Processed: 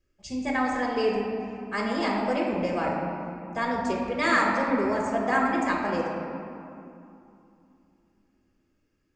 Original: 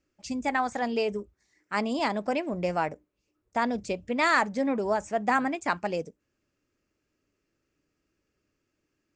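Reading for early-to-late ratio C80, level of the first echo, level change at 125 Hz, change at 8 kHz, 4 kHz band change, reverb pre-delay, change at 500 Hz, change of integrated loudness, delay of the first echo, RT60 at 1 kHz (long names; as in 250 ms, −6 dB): 2.0 dB, no echo audible, +3.0 dB, −1.0 dB, +0.5 dB, 3 ms, +2.5 dB, +1.5 dB, no echo audible, 2.7 s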